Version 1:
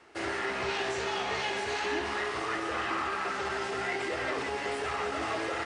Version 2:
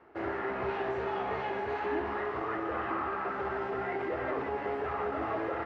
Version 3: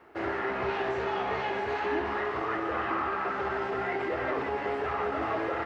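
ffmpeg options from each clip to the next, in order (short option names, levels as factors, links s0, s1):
-af "lowpass=1300,volume=1.12"
-af "highshelf=f=2800:g=9.5,volume=1.26"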